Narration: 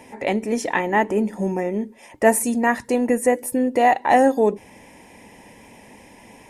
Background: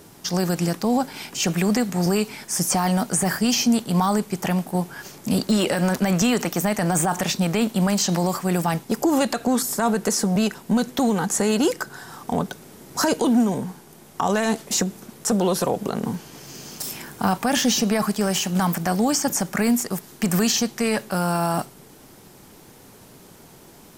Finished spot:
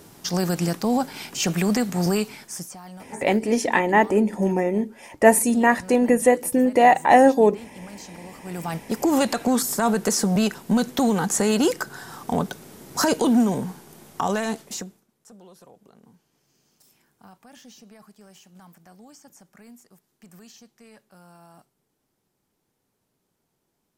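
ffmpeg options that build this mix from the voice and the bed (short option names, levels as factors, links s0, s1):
-filter_complex "[0:a]adelay=3000,volume=1.19[s0];[1:a]volume=9.44,afade=t=out:st=2.14:d=0.59:silence=0.105925,afade=t=in:st=8.38:d=0.78:silence=0.0944061,afade=t=out:st=14.03:d=1.01:silence=0.0398107[s1];[s0][s1]amix=inputs=2:normalize=0"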